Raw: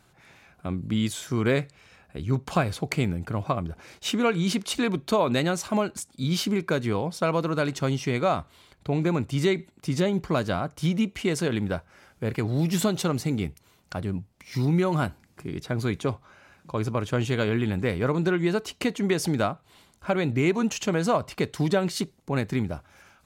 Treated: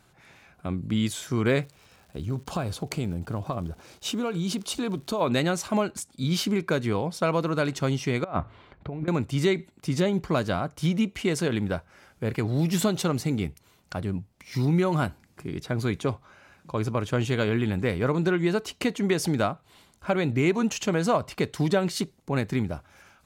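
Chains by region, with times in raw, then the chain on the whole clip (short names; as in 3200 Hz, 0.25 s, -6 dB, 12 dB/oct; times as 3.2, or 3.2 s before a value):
1.62–5.2 bell 2000 Hz -8.5 dB 0.73 oct + compressor 3:1, threshold -25 dBFS + crackle 270/s -45 dBFS
8.24–9.08 LPF 1900 Hz + de-hum 54.85 Hz, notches 2 + negative-ratio compressor -29 dBFS, ratio -0.5
whole clip: dry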